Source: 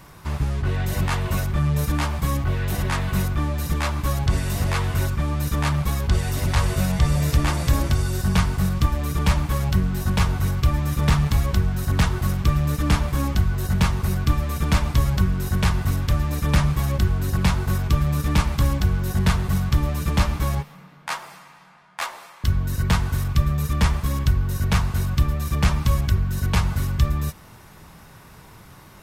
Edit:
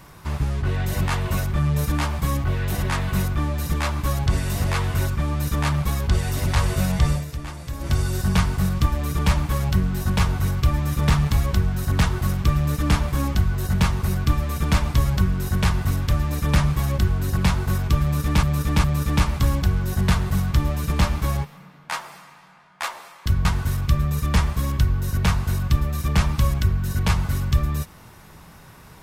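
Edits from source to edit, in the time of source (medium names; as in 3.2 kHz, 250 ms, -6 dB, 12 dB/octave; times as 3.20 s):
7.10–7.94 s: dip -12 dB, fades 0.15 s
18.02–18.43 s: loop, 3 plays
22.63–22.92 s: delete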